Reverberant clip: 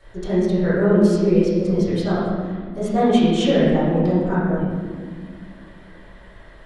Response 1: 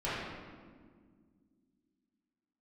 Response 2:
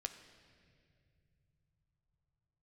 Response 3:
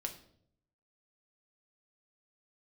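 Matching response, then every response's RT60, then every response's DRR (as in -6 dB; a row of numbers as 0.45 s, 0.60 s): 1; 1.8 s, no single decay rate, 0.65 s; -12.0 dB, 6.5 dB, 3.0 dB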